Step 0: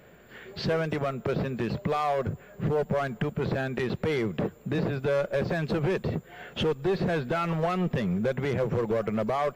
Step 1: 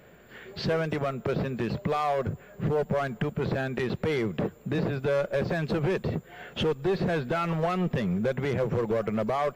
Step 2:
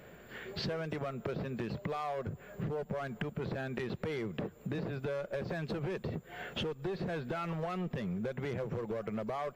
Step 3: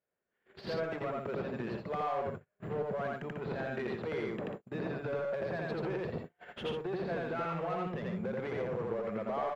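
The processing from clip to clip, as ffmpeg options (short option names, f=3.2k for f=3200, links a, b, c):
-af anull
-af "acompressor=threshold=-35dB:ratio=5"
-filter_complex "[0:a]asplit=2[a][b];[b]highpass=f=720:p=1,volume=13dB,asoftclip=type=tanh:threshold=-22.5dB[c];[a][c]amix=inputs=2:normalize=0,lowpass=f=1.2k:p=1,volume=-6dB,aecho=1:1:84.55|142.9:0.891|0.447,agate=range=-38dB:threshold=-36dB:ratio=16:detection=peak,volume=-2.5dB"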